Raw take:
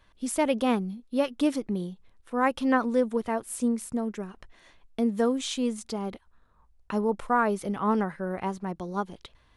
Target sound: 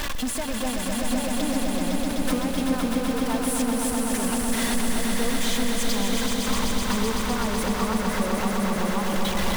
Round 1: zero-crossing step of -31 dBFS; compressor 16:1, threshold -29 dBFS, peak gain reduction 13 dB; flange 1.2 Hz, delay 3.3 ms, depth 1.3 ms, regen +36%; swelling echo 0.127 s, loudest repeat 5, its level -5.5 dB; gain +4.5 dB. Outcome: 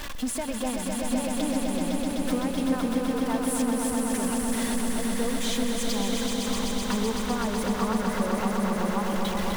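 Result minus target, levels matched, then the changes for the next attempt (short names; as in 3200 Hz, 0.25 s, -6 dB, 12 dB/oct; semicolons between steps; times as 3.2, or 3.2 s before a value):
zero-crossing step: distortion -7 dB
change: zero-crossing step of -22 dBFS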